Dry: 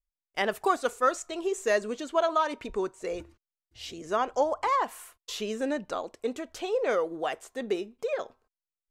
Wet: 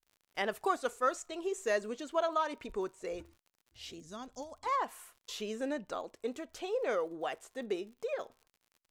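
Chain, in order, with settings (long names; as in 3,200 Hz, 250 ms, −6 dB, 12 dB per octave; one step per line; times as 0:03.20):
gain on a spectral selection 0:04.00–0:04.66, 290–3,300 Hz −14 dB
surface crackle 70 per second −45 dBFS
level −6 dB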